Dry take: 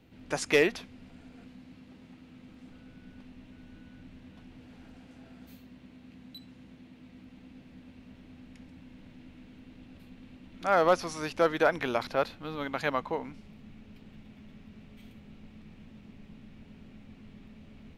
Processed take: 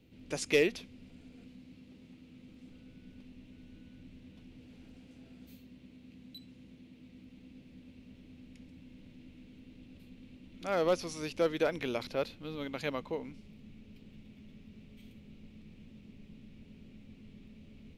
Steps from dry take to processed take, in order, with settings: high-order bell 1.1 kHz -8.5 dB; trim -2.5 dB

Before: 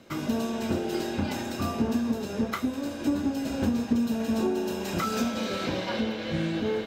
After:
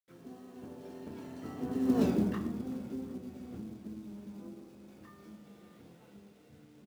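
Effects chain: Doppler pass-by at 2.03 s, 34 m/s, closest 1.8 m; feedback echo behind a low-pass 375 ms, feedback 63%, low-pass 3.8 kHz, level -23.5 dB; in parallel at -3 dB: compression 6:1, threshold -50 dBFS, peak gain reduction 18.5 dB; on the sum: harmony voices -5 st -16 dB, +7 st -7 dB; treble shelf 4.3 kHz -8.5 dB; on a send at -7.5 dB: reverberation RT60 1.1 s, pre-delay 15 ms; on the sum: companded quantiser 6-bit; peaking EQ 180 Hz +6.5 dB 2.7 oct; hum notches 50/100/150 Hz; trim -1 dB

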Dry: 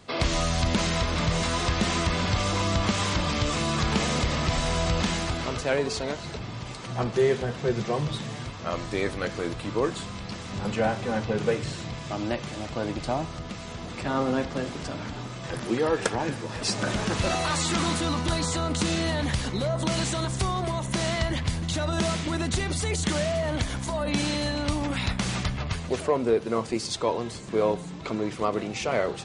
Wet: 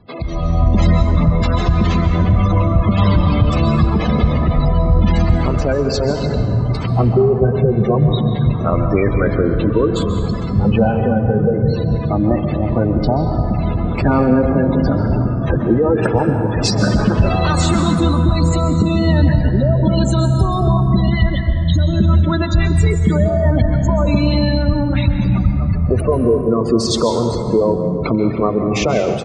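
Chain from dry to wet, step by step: spectral gate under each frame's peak -15 dB strong; 20.77–22.86 s: phase shifter stages 2, 1.1 Hz, lowest notch 120–1200 Hz; compression 6:1, threshold -26 dBFS, peak gain reduction 8 dB; bass shelf 250 Hz +9 dB; speakerphone echo 90 ms, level -27 dB; plate-style reverb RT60 2.3 s, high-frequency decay 0.5×, pre-delay 120 ms, DRR 5.5 dB; level rider gain up to 16.5 dB; trim -1 dB

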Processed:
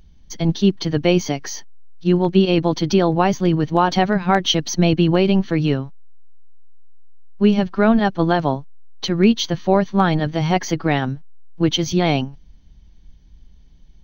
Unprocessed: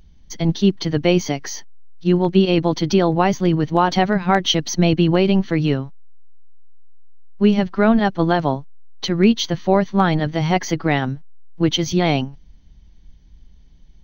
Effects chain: band-stop 2 kHz, Q 20

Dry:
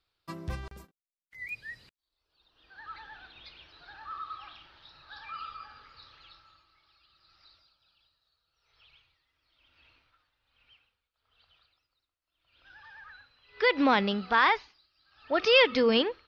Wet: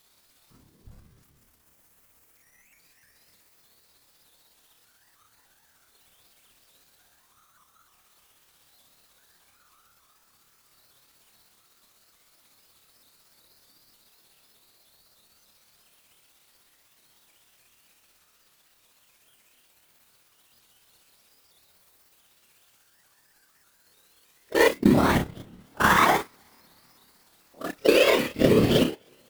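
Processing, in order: zero-crossing glitches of -25 dBFS; peaking EQ 120 Hz +2.5 dB 1.9 oct; spring tank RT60 3.8 s, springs 56 ms, chirp 75 ms, DRR 10.5 dB; whisper effect; feedback echo behind a high-pass 76 ms, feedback 77%, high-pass 1.9 kHz, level -9 dB; gate -22 dBFS, range -34 dB; bass shelf 320 Hz +10.5 dB; in parallel at -8.5 dB: sample-rate reducer 4.5 kHz, jitter 0%; on the sum: compression 12:1, threshold -21 dBFS, peak gain reduction 11 dB; granular stretch 1.8×, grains 124 ms; vibrato with a chosen wave saw up 3.3 Hz, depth 160 cents; trim +7 dB

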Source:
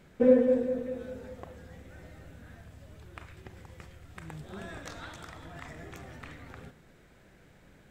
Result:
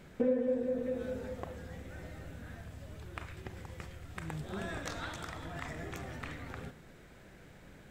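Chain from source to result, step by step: compression 3:1, threshold -34 dBFS, peak gain reduction 14 dB; trim +3 dB

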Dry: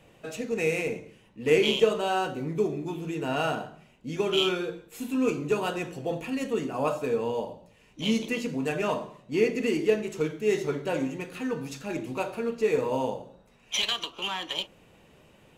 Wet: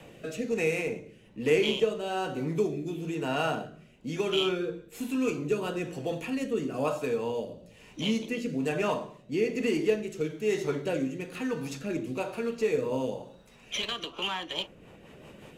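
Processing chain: short-mantissa float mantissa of 8-bit; rotary cabinet horn 1.1 Hz, later 5.5 Hz, at 14.11 s; three bands compressed up and down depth 40%

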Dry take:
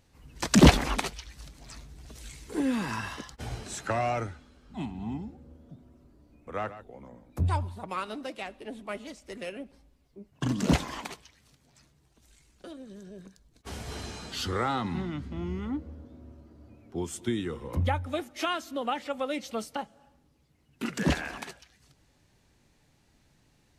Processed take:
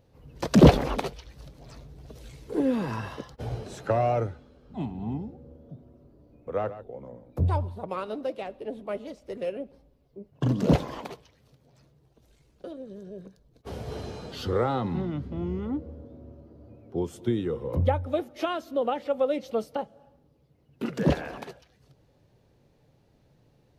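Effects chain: graphic EQ 125/500/2000/8000 Hz +8/+11/-4/-10 dB; in parallel at -6 dB: overload inside the chain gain 9.5 dB; on the sum: trim -5.5 dB

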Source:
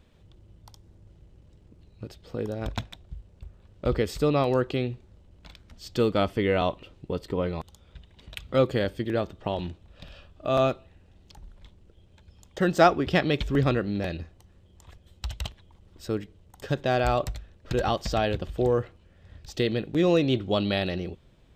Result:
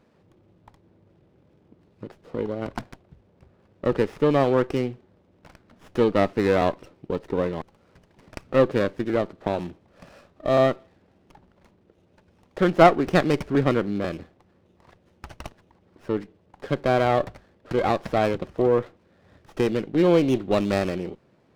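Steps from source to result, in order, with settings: band-pass 190–2900 Hz; sliding maximum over 9 samples; trim +4 dB

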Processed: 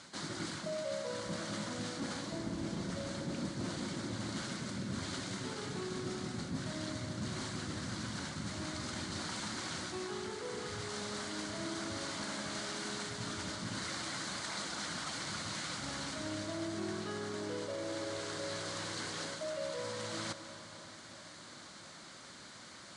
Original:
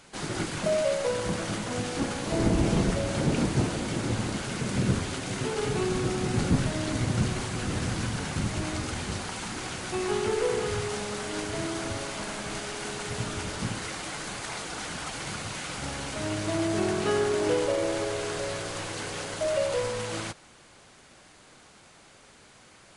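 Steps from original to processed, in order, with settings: reverse; compression 4:1, threshold -40 dBFS, peak gain reduction 17.5 dB; reverse; cabinet simulation 110–8800 Hz, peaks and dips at 130 Hz -4 dB, 440 Hz -9 dB, 780 Hz -6 dB, 2.6 kHz -8 dB, 4.2 kHz +5 dB; reverberation RT60 4.3 s, pre-delay 152 ms, DRR 11 dB; trim +3 dB

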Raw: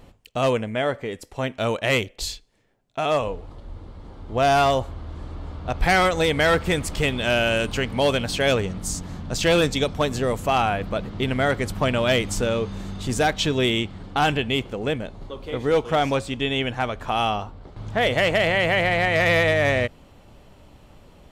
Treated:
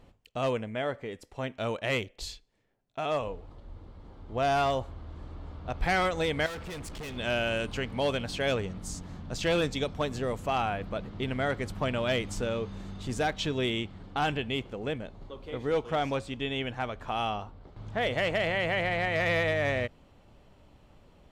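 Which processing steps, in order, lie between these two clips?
treble shelf 8.2 kHz -8.5 dB; 6.46–7.17 s: overload inside the chain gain 29 dB; trim -8 dB

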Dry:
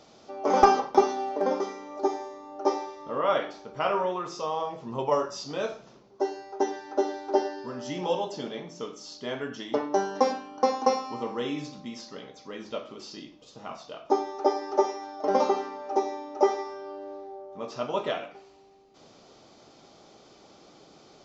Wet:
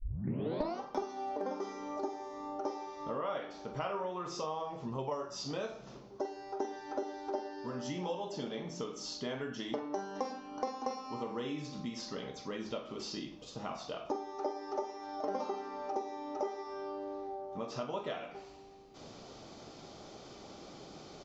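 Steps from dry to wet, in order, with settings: tape start-up on the opening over 0.81 s; bass shelf 140 Hz +8 dB; compression 4:1, threshold -39 dBFS, peak gain reduction 23.5 dB; doubling 45 ms -11.5 dB; trim +2 dB

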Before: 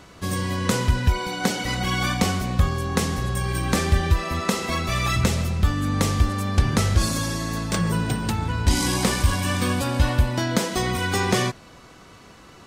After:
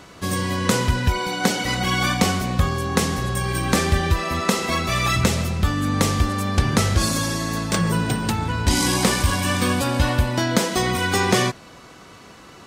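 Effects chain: bass shelf 74 Hz -9 dB; trim +3.5 dB

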